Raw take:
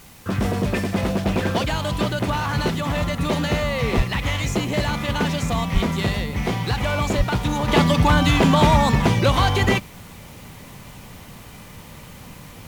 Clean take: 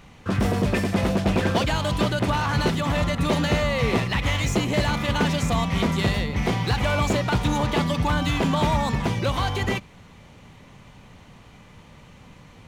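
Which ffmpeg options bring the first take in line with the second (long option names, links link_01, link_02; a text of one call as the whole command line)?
ffmpeg -i in.wav -filter_complex "[0:a]asplit=3[link_01][link_02][link_03];[link_01]afade=type=out:start_time=3.96:duration=0.02[link_04];[link_02]highpass=frequency=140:width=0.5412,highpass=frequency=140:width=1.3066,afade=type=in:start_time=3.96:duration=0.02,afade=type=out:start_time=4.08:duration=0.02[link_05];[link_03]afade=type=in:start_time=4.08:duration=0.02[link_06];[link_04][link_05][link_06]amix=inputs=3:normalize=0,asplit=3[link_07][link_08][link_09];[link_07]afade=type=out:start_time=5.73:duration=0.02[link_10];[link_08]highpass=frequency=140:width=0.5412,highpass=frequency=140:width=1.3066,afade=type=in:start_time=5.73:duration=0.02,afade=type=out:start_time=5.85:duration=0.02[link_11];[link_09]afade=type=in:start_time=5.85:duration=0.02[link_12];[link_10][link_11][link_12]amix=inputs=3:normalize=0,asplit=3[link_13][link_14][link_15];[link_13]afade=type=out:start_time=7.17:duration=0.02[link_16];[link_14]highpass=frequency=140:width=0.5412,highpass=frequency=140:width=1.3066,afade=type=in:start_time=7.17:duration=0.02,afade=type=out:start_time=7.29:duration=0.02[link_17];[link_15]afade=type=in:start_time=7.29:duration=0.02[link_18];[link_16][link_17][link_18]amix=inputs=3:normalize=0,agate=range=-21dB:threshold=-33dB,asetnsamples=nb_out_samples=441:pad=0,asendcmd='7.68 volume volume -6.5dB',volume=0dB" out.wav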